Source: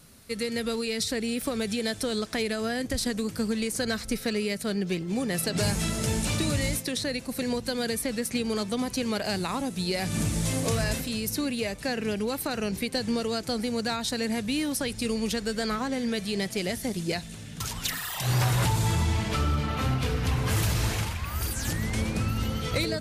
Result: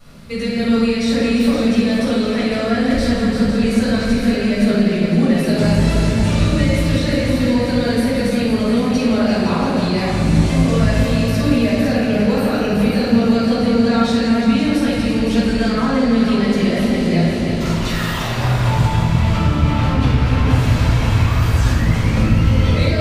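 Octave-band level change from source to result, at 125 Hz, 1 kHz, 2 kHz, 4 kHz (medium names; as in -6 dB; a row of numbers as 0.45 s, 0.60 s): +13.0 dB, +10.5 dB, +9.0 dB, +6.0 dB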